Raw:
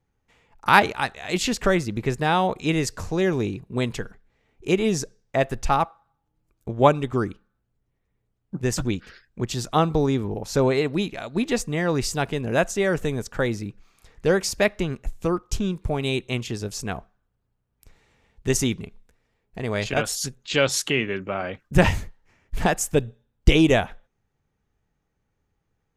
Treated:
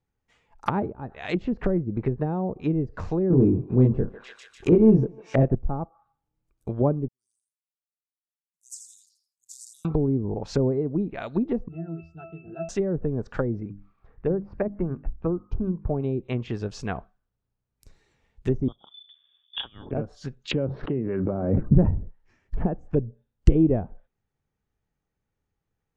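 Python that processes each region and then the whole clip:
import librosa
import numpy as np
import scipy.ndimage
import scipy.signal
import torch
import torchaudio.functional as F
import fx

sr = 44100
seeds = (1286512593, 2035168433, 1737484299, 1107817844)

y = fx.chain(x, sr, fx.doubler(ms=23.0, db=-2.0),
    fx.leveller(passes=2),
    fx.echo_thinned(ms=148, feedback_pct=62, hz=820.0, wet_db=-13.5), at=(3.3, 5.55))
y = fx.chain(y, sr, fx.cheby2_highpass(hz=2000.0, order=4, stop_db=70),
    fx.echo_feedback(ms=83, feedback_pct=24, wet_db=-7.5),
    fx.sustainer(db_per_s=86.0), at=(7.08, 9.85))
y = fx.chain(y, sr, fx.high_shelf(hz=8400.0, db=-6.5),
    fx.octave_resonator(note='E', decay_s=0.39),
    fx.band_squash(depth_pct=40), at=(11.68, 12.69))
y = fx.chain(y, sr, fx.lowpass(hz=1400.0, slope=12),
    fx.peak_eq(hz=520.0, db=-3.0, octaves=0.93),
    fx.hum_notches(base_hz=50, count=6), at=(13.6, 15.87))
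y = fx.chain(y, sr, fx.peak_eq(hz=73.0, db=11.5, octaves=1.8),
    fx.freq_invert(carrier_hz=3500), at=(18.68, 19.91))
y = fx.chain(y, sr, fx.air_absorb(metres=390.0),
    fx.pre_swell(db_per_s=22.0), at=(20.51, 21.97))
y = fx.env_lowpass_down(y, sr, base_hz=380.0, full_db=-19.5)
y = fx.noise_reduce_blind(y, sr, reduce_db=7)
y = scipy.signal.sosfilt(scipy.signal.butter(2, 9400.0, 'lowpass', fs=sr, output='sos'), y)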